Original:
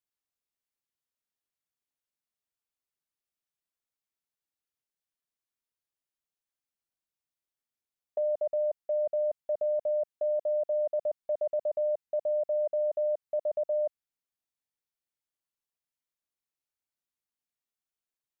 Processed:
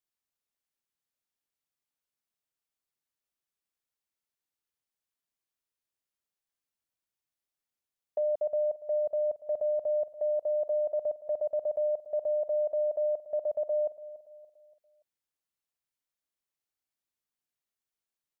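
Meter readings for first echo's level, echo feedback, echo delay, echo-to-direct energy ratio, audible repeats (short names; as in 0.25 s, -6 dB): -16.0 dB, 41%, 0.287 s, -15.0 dB, 3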